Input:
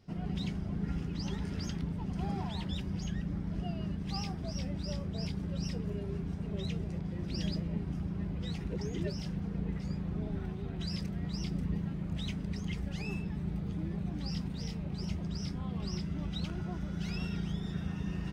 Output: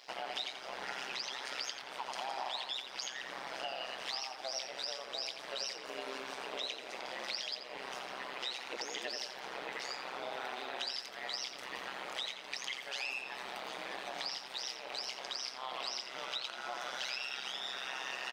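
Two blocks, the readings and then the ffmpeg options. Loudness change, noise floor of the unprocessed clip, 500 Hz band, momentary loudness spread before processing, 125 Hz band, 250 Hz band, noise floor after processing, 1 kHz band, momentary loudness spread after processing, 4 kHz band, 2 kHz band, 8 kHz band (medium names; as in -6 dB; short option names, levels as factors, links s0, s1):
-2.5 dB, -40 dBFS, 0.0 dB, 2 LU, -35.0 dB, -22.0 dB, -48 dBFS, +7.5 dB, 4 LU, +8.0 dB, +9.5 dB, no reading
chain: -filter_complex "[0:a]highpass=f=630:w=0.5412,highpass=f=630:w=1.3066,equalizer=f=3900:t=o:w=1.6:g=6,acompressor=threshold=0.00282:ratio=6,tremolo=f=130:d=0.974,asplit=2[s0][s1];[s1]adelay=86,lowpass=f=2500:p=1,volume=0.631,asplit=2[s2][s3];[s3]adelay=86,lowpass=f=2500:p=1,volume=0.49,asplit=2[s4][s5];[s5]adelay=86,lowpass=f=2500:p=1,volume=0.49,asplit=2[s6][s7];[s7]adelay=86,lowpass=f=2500:p=1,volume=0.49,asplit=2[s8][s9];[s9]adelay=86,lowpass=f=2500:p=1,volume=0.49,asplit=2[s10][s11];[s11]adelay=86,lowpass=f=2500:p=1,volume=0.49[s12];[s2][s4][s6][s8][s10][s12]amix=inputs=6:normalize=0[s13];[s0][s13]amix=inputs=2:normalize=0,volume=6.68"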